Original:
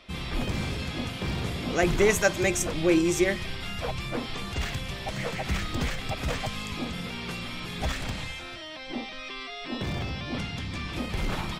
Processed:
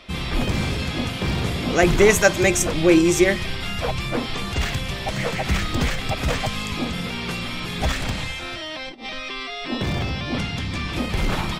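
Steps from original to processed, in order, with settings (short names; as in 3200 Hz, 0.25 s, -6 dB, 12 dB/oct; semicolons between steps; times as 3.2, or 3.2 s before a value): 8.42–9.19 negative-ratio compressor -39 dBFS, ratio -0.5; gain +7 dB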